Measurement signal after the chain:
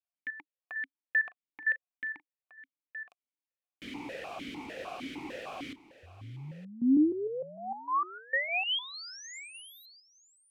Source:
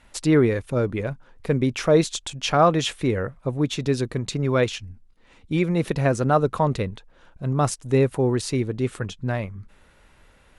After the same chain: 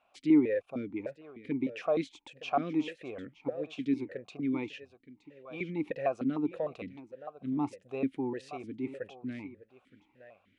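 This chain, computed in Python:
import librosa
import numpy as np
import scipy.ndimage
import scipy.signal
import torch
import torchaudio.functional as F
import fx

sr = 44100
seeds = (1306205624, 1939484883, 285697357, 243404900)

p1 = x + fx.echo_single(x, sr, ms=919, db=-15.5, dry=0)
y = fx.vowel_held(p1, sr, hz=6.6)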